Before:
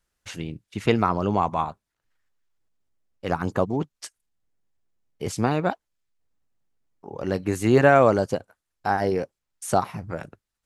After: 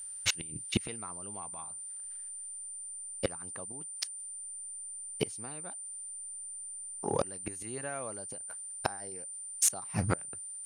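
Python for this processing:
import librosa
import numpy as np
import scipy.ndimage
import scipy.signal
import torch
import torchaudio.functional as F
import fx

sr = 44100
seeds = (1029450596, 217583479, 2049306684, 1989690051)

p1 = fx.peak_eq(x, sr, hz=4800.0, db=8.5, octaves=2.8)
p2 = fx.gate_flip(p1, sr, shuts_db=-17.0, range_db=-31)
p3 = p2 + 10.0 ** (-46.0 / 20.0) * np.sin(2.0 * np.pi * 9100.0 * np.arange(len(p2)) / sr)
p4 = np.clip(p3, -10.0 ** (-27.5 / 20.0), 10.0 ** (-27.5 / 20.0))
p5 = p3 + (p4 * librosa.db_to_amplitude(-4.0))
y = p5 * librosa.db_to_amplitude(1.5)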